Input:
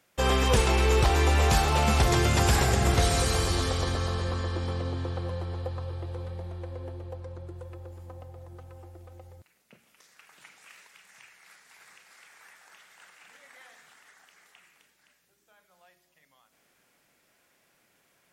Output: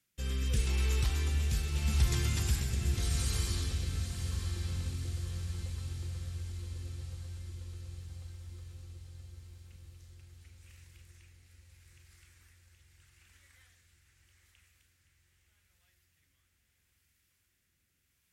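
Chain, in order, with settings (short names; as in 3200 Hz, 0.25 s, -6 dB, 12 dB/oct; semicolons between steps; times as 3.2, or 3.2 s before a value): high shelf 11000 Hz +6.5 dB; rotary speaker horn 0.8 Hz; passive tone stack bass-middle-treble 6-0-2; on a send: diffused feedback echo 0.943 s, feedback 66%, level -9.5 dB; on the sum: gain +7.5 dB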